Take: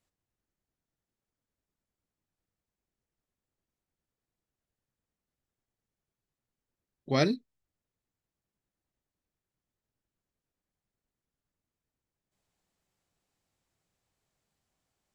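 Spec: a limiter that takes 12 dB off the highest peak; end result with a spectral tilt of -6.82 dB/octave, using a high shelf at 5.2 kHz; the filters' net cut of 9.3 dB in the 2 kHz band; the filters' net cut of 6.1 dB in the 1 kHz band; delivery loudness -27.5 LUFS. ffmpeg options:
-af "equalizer=f=1000:t=o:g=-7,equalizer=f=2000:t=o:g=-8,highshelf=f=5200:g=-8,volume=3.55,alimiter=limit=0.168:level=0:latency=1"

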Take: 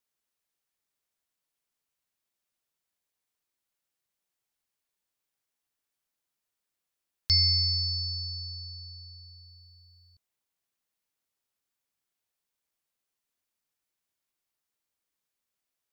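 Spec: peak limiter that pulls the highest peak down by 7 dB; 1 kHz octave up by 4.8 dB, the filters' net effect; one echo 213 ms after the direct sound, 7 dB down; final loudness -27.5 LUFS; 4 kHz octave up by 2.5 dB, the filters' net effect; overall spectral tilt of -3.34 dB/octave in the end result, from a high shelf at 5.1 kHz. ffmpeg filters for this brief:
-af "equalizer=f=1000:t=o:g=6,equalizer=f=4000:t=o:g=6.5,highshelf=f=5100:g=-6.5,alimiter=limit=0.126:level=0:latency=1,aecho=1:1:213:0.447,volume=0.794"

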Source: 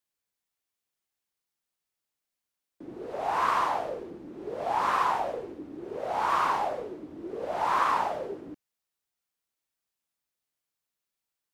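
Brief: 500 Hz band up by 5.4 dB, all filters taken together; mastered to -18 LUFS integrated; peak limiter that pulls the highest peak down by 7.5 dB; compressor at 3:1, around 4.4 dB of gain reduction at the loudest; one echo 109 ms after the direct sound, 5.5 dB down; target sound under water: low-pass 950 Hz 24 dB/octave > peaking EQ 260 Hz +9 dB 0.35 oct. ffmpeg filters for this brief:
-af "equalizer=f=500:t=o:g=6.5,acompressor=threshold=0.0501:ratio=3,alimiter=limit=0.0668:level=0:latency=1,lowpass=f=950:w=0.5412,lowpass=f=950:w=1.3066,equalizer=f=260:t=o:w=0.35:g=9,aecho=1:1:109:0.531,volume=5.62"

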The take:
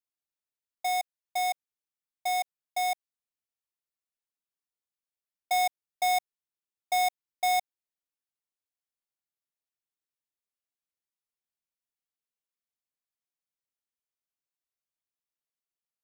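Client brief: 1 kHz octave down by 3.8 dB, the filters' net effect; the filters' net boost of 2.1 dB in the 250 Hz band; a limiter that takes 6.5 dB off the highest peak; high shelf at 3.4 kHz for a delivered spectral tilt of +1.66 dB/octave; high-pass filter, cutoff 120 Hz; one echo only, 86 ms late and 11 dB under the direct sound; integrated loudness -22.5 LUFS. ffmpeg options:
-af "highpass=120,equalizer=f=250:t=o:g=5,equalizer=f=1000:t=o:g=-8,highshelf=f=3400:g=5.5,alimiter=limit=0.0668:level=0:latency=1,aecho=1:1:86:0.282,volume=4.22"

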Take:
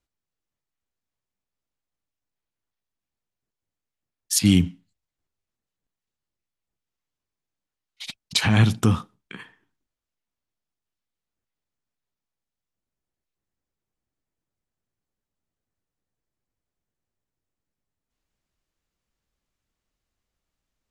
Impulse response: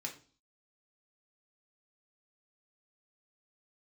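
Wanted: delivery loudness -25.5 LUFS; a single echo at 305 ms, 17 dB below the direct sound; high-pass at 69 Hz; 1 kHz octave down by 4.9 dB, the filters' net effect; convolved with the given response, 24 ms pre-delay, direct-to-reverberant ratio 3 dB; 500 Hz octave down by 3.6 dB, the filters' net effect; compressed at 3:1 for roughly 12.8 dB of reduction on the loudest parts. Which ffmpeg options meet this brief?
-filter_complex "[0:a]highpass=69,equalizer=f=500:t=o:g=-4,equalizer=f=1000:t=o:g=-5.5,acompressor=threshold=0.0282:ratio=3,aecho=1:1:305:0.141,asplit=2[s0][s1];[1:a]atrim=start_sample=2205,adelay=24[s2];[s1][s2]afir=irnorm=-1:irlink=0,volume=0.75[s3];[s0][s3]amix=inputs=2:normalize=0,volume=2"

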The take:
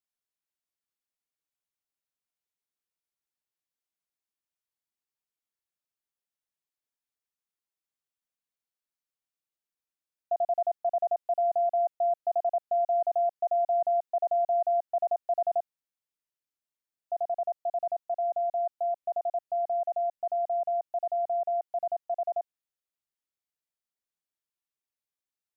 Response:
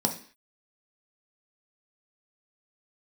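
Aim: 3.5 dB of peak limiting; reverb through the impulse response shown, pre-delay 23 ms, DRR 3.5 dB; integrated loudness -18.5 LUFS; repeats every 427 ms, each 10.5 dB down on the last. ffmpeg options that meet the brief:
-filter_complex "[0:a]alimiter=level_in=1.12:limit=0.0631:level=0:latency=1,volume=0.891,aecho=1:1:427|854|1281:0.299|0.0896|0.0269,asplit=2[s0][s1];[1:a]atrim=start_sample=2205,adelay=23[s2];[s1][s2]afir=irnorm=-1:irlink=0,volume=0.251[s3];[s0][s3]amix=inputs=2:normalize=0,volume=2.51"

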